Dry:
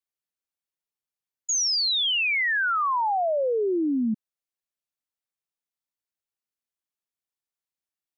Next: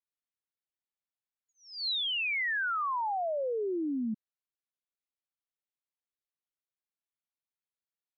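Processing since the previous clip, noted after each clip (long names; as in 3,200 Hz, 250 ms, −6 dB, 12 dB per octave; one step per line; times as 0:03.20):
elliptic low-pass filter 4,200 Hz
level −7 dB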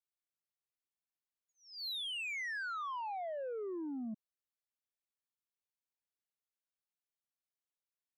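soft clipping −30.5 dBFS, distortion −20 dB
level −6 dB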